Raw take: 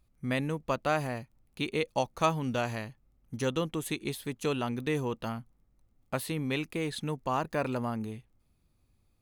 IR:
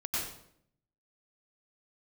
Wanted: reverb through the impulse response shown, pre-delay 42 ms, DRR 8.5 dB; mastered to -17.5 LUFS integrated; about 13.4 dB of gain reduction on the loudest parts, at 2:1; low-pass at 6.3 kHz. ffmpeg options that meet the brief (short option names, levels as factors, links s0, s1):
-filter_complex "[0:a]lowpass=6300,acompressor=threshold=0.00501:ratio=2,asplit=2[s0][s1];[1:a]atrim=start_sample=2205,adelay=42[s2];[s1][s2]afir=irnorm=-1:irlink=0,volume=0.211[s3];[s0][s3]amix=inputs=2:normalize=0,volume=17.8"